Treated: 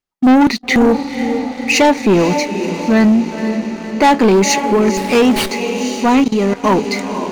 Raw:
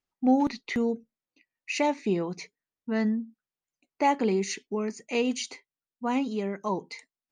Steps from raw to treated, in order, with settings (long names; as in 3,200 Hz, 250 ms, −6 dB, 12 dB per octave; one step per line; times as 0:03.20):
feedback delay with all-pass diffusion 506 ms, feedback 58%, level −11.5 dB
0:06.24–0:06.64: output level in coarse steps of 16 dB
leveller curve on the samples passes 3
0:04.97–0:05.51: windowed peak hold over 5 samples
level +8 dB